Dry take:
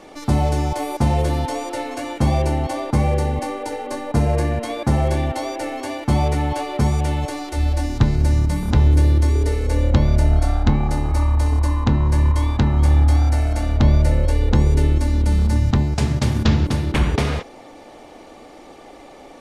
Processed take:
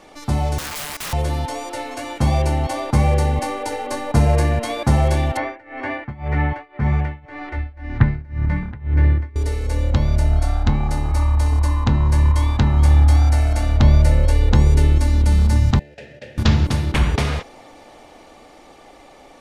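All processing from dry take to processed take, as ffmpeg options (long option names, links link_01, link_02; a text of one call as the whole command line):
ffmpeg -i in.wav -filter_complex "[0:a]asettb=1/sr,asplit=3[link_01][link_02][link_03];[link_01]atrim=end=0.584[link_04];[link_02]atrim=start=0.58:end=1.13,asetpts=PTS-STARTPTS,afade=type=in:duration=0.004:curve=qsin,afade=type=out:start_time=0.546:duration=0.004:curve=qsin,highpass=frequency=310:poles=1,highshelf=frequency=4300:gain=6,aeval=exprs='(mod(13.3*val(0)+1,2)-1)/13.3':channel_layout=same[link_05];[link_03]atrim=start=1.126[link_06];[link_04][link_05]acrossfade=duration=0.004:curve1=hsin:curve2=qsin[link_07];[link_07][link_06]acrossfade=duration=0.004:curve1=qsin:curve2=hsin,asettb=1/sr,asplit=3[link_08][link_09][link_10];[link_08]atrim=end=5.374[link_11];[link_09]atrim=start=5.37:end=9.36,asetpts=PTS-STARTPTS,afade=type=in:duration=0.004:curve=qsin,afade=type=out:start_time=3.986:duration=0.004:curve=qsin,lowpass=frequency=1900:width_type=q:width=3.5,tremolo=f=1.9:d=0.95,equalizer=frequency=150:width_type=o:width=2.2:gain=6[link_12];[link_10]atrim=start=9.356[link_13];[link_11][link_12]acrossfade=duration=0.004:curve1=hsin:curve2=qsin[link_14];[link_14][link_13]acrossfade=duration=0.004:curve1=qsin:curve2=hsin,asettb=1/sr,asplit=3[link_15][link_16][link_17];[link_15]atrim=end=15.794[link_18];[link_16]atrim=start=15.79:end=16.38,asetpts=PTS-STARTPTS,afade=type=in:duration=0.004:curve=qsin,afade=type=out:start_time=0.586:duration=0.004:curve=qsin,acrusher=bits=7:mode=log:mix=0:aa=0.000001,asplit=3[link_19][link_20][link_21];[link_19]bandpass=frequency=530:width_type=q:width=8,volume=0dB[link_22];[link_20]bandpass=frequency=1840:width_type=q:width=8,volume=-6dB[link_23];[link_21]bandpass=frequency=2480:width_type=q:width=8,volume=-9dB[link_24];[link_22][link_23][link_24]amix=inputs=3:normalize=0[link_25];[link_17]atrim=start=16.376[link_26];[link_18][link_25]acrossfade=duration=0.004:curve1=hsin:curve2=qsin[link_27];[link_27][link_26]acrossfade=duration=0.004:curve1=qsin:curve2=hsin,equalizer=frequency=330:width_type=o:width=1.8:gain=-5,dynaudnorm=framelen=390:gausssize=13:maxgain=11.5dB,volume=-1dB" out.wav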